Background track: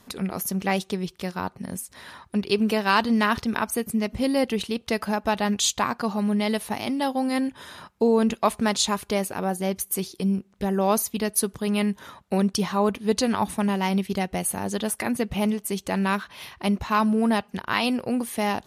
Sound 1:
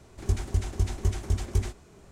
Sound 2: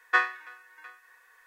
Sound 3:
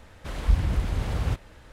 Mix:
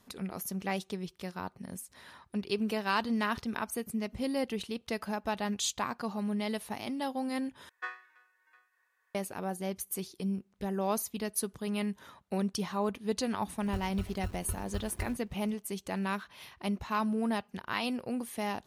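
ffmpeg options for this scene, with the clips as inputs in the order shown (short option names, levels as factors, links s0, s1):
-filter_complex "[0:a]volume=0.335[s0];[1:a]acrusher=samples=32:mix=1:aa=0.000001[s1];[s0]asplit=2[s2][s3];[s2]atrim=end=7.694[s4];[2:a]atrim=end=1.46,asetpts=PTS-STARTPTS,volume=0.15[s5];[s3]atrim=start=9.146[s6];[s1]atrim=end=2.11,asetpts=PTS-STARTPTS,volume=0.237,afade=t=in:d=0.004:c=hsin,afade=t=out:st=2.106:d=0.004:c=hsin,adelay=13440[s7];[s4][s5]acrossfade=d=0.004:c1=hsin:c2=hsin[s8];[s8][s6]acrossfade=d=0.004:c1=hsin:c2=hsin[s9];[s9][s7]amix=inputs=2:normalize=0"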